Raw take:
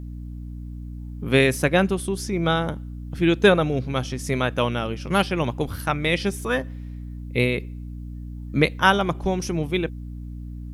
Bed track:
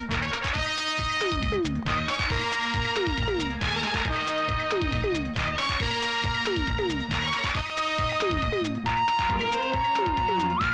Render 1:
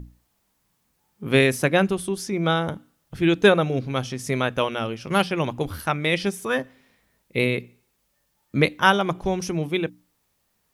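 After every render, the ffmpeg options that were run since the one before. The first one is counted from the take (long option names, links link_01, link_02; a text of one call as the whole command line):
ffmpeg -i in.wav -af "bandreject=frequency=60:width_type=h:width=6,bandreject=frequency=120:width_type=h:width=6,bandreject=frequency=180:width_type=h:width=6,bandreject=frequency=240:width_type=h:width=6,bandreject=frequency=300:width_type=h:width=6" out.wav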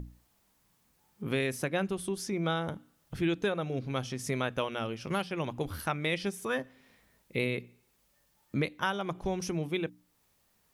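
ffmpeg -i in.wav -af "alimiter=limit=-9dB:level=0:latency=1:release=471,acompressor=threshold=-42dB:ratio=1.5" out.wav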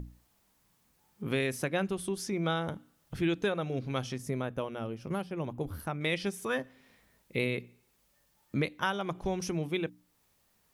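ffmpeg -i in.wav -filter_complex "[0:a]asettb=1/sr,asplit=3[link_01][link_02][link_03];[link_01]atrim=end=4.184[link_04];[link_02]atrim=start=4.18:end=6.01,asetpts=PTS-STARTPTS,afade=type=in:duration=0.004:curve=qsin,afade=type=out:start_time=1.826:duration=0.004:curve=qsin,equalizer=frequency=3600:width=0.32:gain=-11[link_05];[link_03]atrim=start=6.006[link_06];[link_04][link_05]acrossfade=duration=0.004:curve1=hsin:curve2=qsin[link_07];[link_07][link_06]acrossfade=duration=0.004:curve1=qsin:curve2=hsin" out.wav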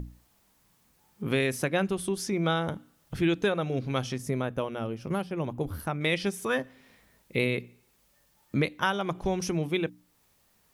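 ffmpeg -i in.wav -af "volume=4dB" out.wav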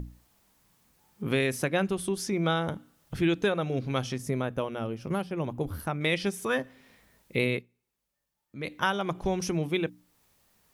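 ffmpeg -i in.wav -filter_complex "[0:a]asplit=3[link_01][link_02][link_03];[link_01]atrim=end=7.88,asetpts=PTS-STARTPTS,afade=type=out:start_time=7.57:duration=0.31:curve=exp:silence=0.141254[link_04];[link_02]atrim=start=7.88:end=8.36,asetpts=PTS-STARTPTS,volume=-17dB[link_05];[link_03]atrim=start=8.36,asetpts=PTS-STARTPTS,afade=type=in:duration=0.31:curve=exp:silence=0.141254[link_06];[link_04][link_05][link_06]concat=n=3:v=0:a=1" out.wav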